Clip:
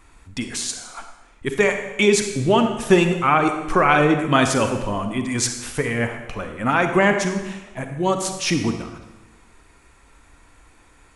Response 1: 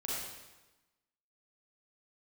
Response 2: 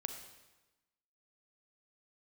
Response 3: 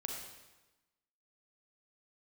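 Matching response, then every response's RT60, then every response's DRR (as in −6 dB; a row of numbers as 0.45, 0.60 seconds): 2; 1.1, 1.1, 1.1 seconds; −6.5, 6.0, 0.5 decibels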